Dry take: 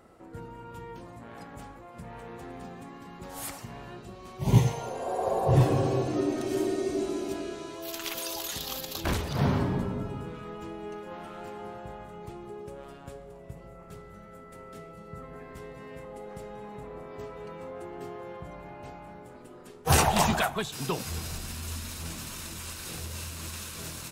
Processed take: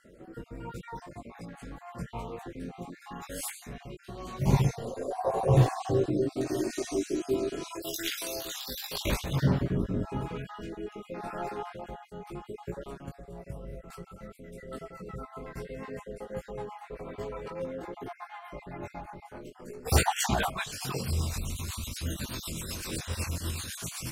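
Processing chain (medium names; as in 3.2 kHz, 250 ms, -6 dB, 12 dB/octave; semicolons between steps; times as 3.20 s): random holes in the spectrogram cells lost 42%; 6.70–7.77 s: treble shelf 4.7 kHz +6.5 dB; in parallel at 0 dB: compression, threshold -38 dBFS, peak gain reduction 20.5 dB; on the sum: rotary cabinet horn 0.85 Hz, later 8 Hz, at 13.21 s; chorus voices 4, 0.49 Hz, delay 19 ms, depth 3.8 ms; trim +4 dB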